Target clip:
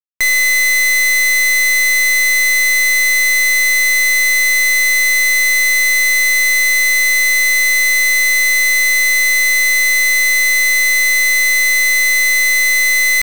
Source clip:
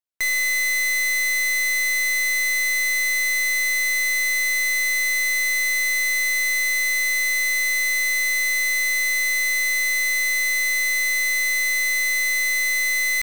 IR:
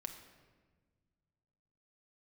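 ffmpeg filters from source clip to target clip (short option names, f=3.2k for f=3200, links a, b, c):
-af "acrusher=bits=7:dc=4:mix=0:aa=0.000001,volume=8.5dB"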